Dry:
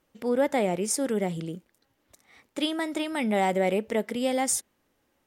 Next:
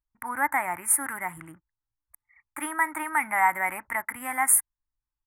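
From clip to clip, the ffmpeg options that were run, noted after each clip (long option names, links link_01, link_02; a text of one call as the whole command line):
ffmpeg -i in.wav -af "anlmdn=0.01,firequalizer=gain_entry='entry(110,0);entry(200,-21);entry(300,-7);entry(440,-29);entry(640,-9);entry(920,12);entry(2000,10);entry(3000,-17);entry(4300,-29);entry(10000,14)':delay=0.05:min_phase=1" out.wav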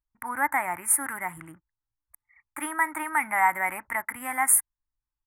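ffmpeg -i in.wav -af anull out.wav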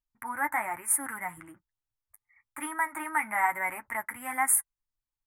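ffmpeg -i in.wav -af "flanger=delay=7.2:depth=2.6:regen=-28:speed=1.1:shape=sinusoidal" out.wav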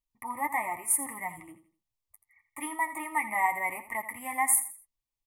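ffmpeg -i in.wav -af "asuperstop=centerf=1500:order=12:qfactor=2.5,aecho=1:1:83|166|249:0.224|0.0716|0.0229" out.wav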